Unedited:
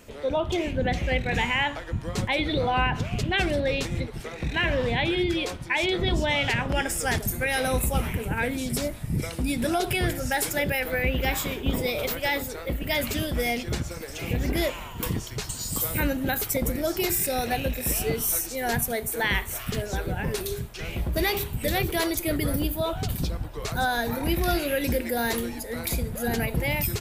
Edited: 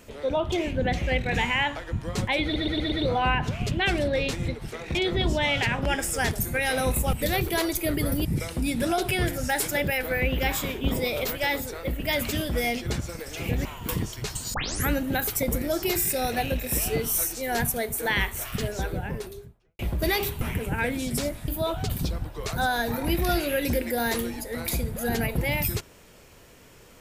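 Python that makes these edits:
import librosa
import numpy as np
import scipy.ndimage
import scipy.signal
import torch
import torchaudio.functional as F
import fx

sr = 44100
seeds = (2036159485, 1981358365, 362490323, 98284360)

y = fx.studio_fade_out(x, sr, start_s=19.86, length_s=1.07)
y = fx.edit(y, sr, fx.stutter(start_s=2.44, slice_s=0.12, count=5),
    fx.cut(start_s=4.47, length_s=1.35),
    fx.swap(start_s=8.0, length_s=1.07, other_s=21.55, other_length_s=1.12),
    fx.cut(start_s=14.47, length_s=0.32),
    fx.tape_start(start_s=15.68, length_s=0.36), tone=tone)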